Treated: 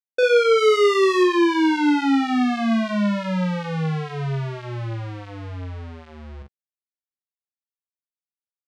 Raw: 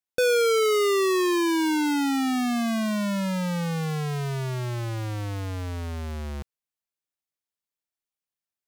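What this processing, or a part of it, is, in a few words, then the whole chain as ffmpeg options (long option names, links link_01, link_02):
hearing-loss simulation: -filter_complex "[0:a]asettb=1/sr,asplit=3[link_01][link_02][link_03];[link_01]atrim=end=0.584[link_04];[link_02]atrim=start=0.58:end=1.23,asetpts=PTS-STARTPTS,afade=type=in:duration=0.004:curve=qsin,afade=type=out:start_time=0.646:duration=0.004:curve=qsin,highshelf=frequency=6500:gain=9.5[link_05];[link_03]atrim=start=1.226[link_06];[link_04][link_05]acrossfade=duration=0.004:curve1=hsin:curve2=qsin[link_07];[link_07][link_06]acrossfade=duration=0.004:curve1=qsin:curve2=hsin,lowpass=3500,agate=range=-33dB:threshold=-27dB:ratio=3:detection=peak,aecho=1:1:44|58:0.668|0.133,volume=3.5dB"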